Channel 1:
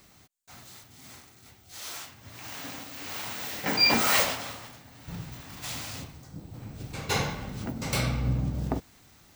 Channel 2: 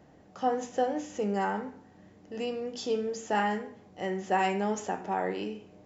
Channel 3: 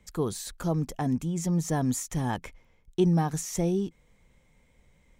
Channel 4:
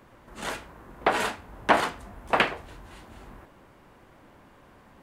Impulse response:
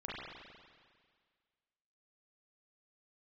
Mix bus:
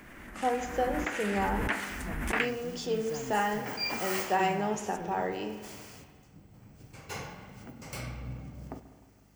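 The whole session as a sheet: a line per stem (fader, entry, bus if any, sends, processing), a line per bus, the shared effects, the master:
-12.5 dB, 0.00 s, send -8 dB, hum 50 Hz, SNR 20 dB; bell 3800 Hz -11 dB 0.25 oct
-2.0 dB, 0.00 s, send -10 dB, dry
-14.5 dB, 1.40 s, no send, dry
-7.5 dB, 0.00 s, no send, ten-band EQ 125 Hz -10 dB, 250 Hz +4 dB, 500 Hz -12 dB, 1000 Hz -9 dB, 2000 Hz +7 dB, 4000 Hz -8 dB; backwards sustainer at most 24 dB/s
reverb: on, RT60 1.8 s, pre-delay 33 ms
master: low shelf 370 Hz -2.5 dB

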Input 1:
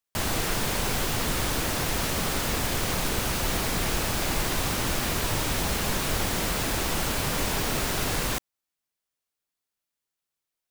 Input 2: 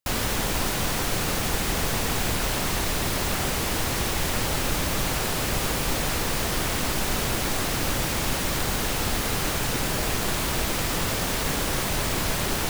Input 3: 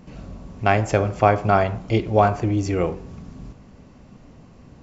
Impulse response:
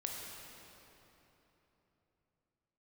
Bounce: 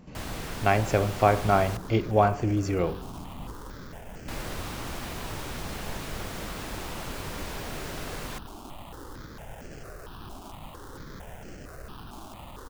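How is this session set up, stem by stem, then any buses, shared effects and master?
-8.5 dB, 0.00 s, muted 1.77–4.28, no send, high shelf 4700 Hz -6 dB
-16.5 dB, 1.20 s, send -10 dB, sample-rate reducer 2200 Hz, jitter 20%; step phaser 4.4 Hz 500–3700 Hz
-4.5 dB, 0.00 s, no send, dry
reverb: on, RT60 3.5 s, pre-delay 16 ms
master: dry

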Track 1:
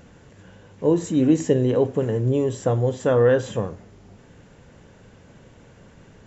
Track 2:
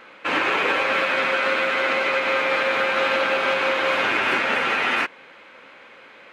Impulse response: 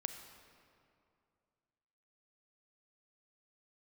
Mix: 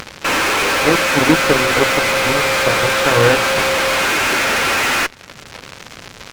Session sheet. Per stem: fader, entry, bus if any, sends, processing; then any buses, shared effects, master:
+3.0 dB, 0.00 s, no send, added harmonics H 7 -13 dB, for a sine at -6 dBFS
-2.5 dB, 0.00 s, send -22.5 dB, fuzz box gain 35 dB, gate -41 dBFS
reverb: on, RT60 2.5 s, pre-delay 30 ms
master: upward compressor, threshold -23 dBFS

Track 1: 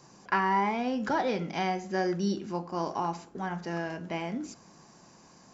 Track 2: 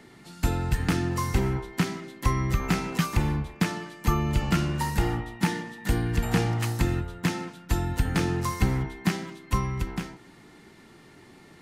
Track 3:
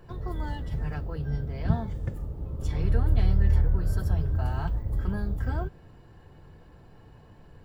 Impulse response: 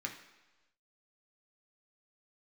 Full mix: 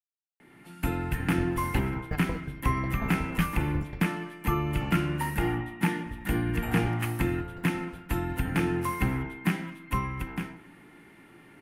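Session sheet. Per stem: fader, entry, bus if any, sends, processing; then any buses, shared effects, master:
off
-8.5 dB, 0.40 s, send -6 dB, band shelf 5400 Hz -12.5 dB 1.3 oct
-4.5 dB, 1.20 s, muted 4.07–6.06, no send, negative-ratio compressor -34 dBFS, ratio -1; dB-ramp tremolo decaying 5.5 Hz, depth 23 dB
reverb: on, RT60 1.1 s, pre-delay 3 ms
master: AGC gain up to 6 dB

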